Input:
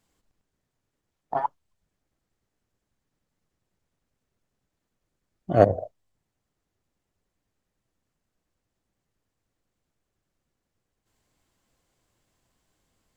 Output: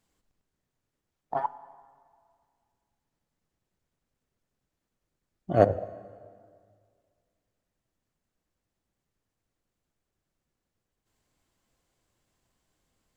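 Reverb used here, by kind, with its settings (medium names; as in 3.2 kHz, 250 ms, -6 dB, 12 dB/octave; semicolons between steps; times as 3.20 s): plate-style reverb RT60 2.1 s, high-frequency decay 0.8×, DRR 16 dB; trim -3 dB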